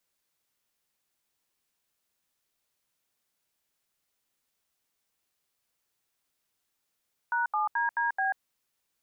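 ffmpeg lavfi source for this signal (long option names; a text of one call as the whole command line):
ffmpeg -f lavfi -i "aevalsrc='0.0422*clip(min(mod(t,0.216),0.139-mod(t,0.216))/0.002,0,1)*(eq(floor(t/0.216),0)*(sin(2*PI*941*mod(t,0.216))+sin(2*PI*1477*mod(t,0.216)))+eq(floor(t/0.216),1)*(sin(2*PI*852*mod(t,0.216))+sin(2*PI*1209*mod(t,0.216)))+eq(floor(t/0.216),2)*(sin(2*PI*941*mod(t,0.216))+sin(2*PI*1633*mod(t,0.216)))+eq(floor(t/0.216),3)*(sin(2*PI*941*mod(t,0.216))+sin(2*PI*1633*mod(t,0.216)))+eq(floor(t/0.216),4)*(sin(2*PI*770*mod(t,0.216))+sin(2*PI*1633*mod(t,0.216))))':duration=1.08:sample_rate=44100" out.wav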